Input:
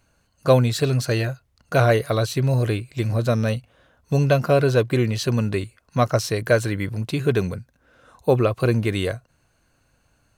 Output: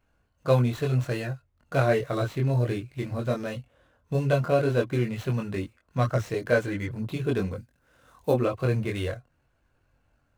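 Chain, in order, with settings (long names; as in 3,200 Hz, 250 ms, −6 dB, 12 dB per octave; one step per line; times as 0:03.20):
running median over 9 samples
0:07.55–0:08.32: high-shelf EQ 5,000 Hz +11.5 dB
multi-voice chorus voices 4, 0.55 Hz, delay 23 ms, depth 2 ms
level −2.5 dB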